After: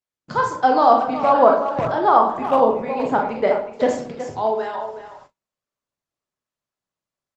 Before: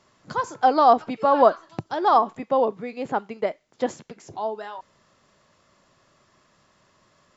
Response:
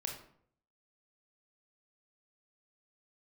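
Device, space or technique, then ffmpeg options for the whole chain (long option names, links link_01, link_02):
speakerphone in a meeting room: -filter_complex "[0:a]asettb=1/sr,asplit=3[link_01][link_02][link_03];[link_01]atrim=end=1.394[link_04];[link_02]atrim=start=1.39:end=3.01,asetpts=PTS-STARTPTS,afade=type=in:duration=0.004:curve=qsin,afade=type=out:start_time=1.616:duration=0.004:curve=qsin,acrossover=split=2900[link_05][link_06];[link_06]acompressor=threshold=-50dB:ratio=4:attack=1:release=60[link_07];[link_05][link_07]amix=inputs=2:normalize=0[link_08];[link_03]atrim=start=3.006[link_09];[link_04][link_08]acrossfade=duration=0.004:curve1=hsin:curve2=qsin[link_10];[link_10][link_09]acrossfade=duration=0.004:curve1=qsin:curve2=hsin[link_11];[1:a]atrim=start_sample=2205[link_12];[link_11][link_12]afir=irnorm=-1:irlink=0,asplit=2[link_13][link_14];[link_14]adelay=370,highpass=300,lowpass=3400,asoftclip=type=hard:threshold=-13dB,volume=-10dB[link_15];[link_13][link_15]amix=inputs=2:normalize=0,dynaudnorm=framelen=190:gausssize=3:maxgain=7.5dB,agate=range=-38dB:threshold=-44dB:ratio=16:detection=peak" -ar 48000 -c:a libopus -b:a 24k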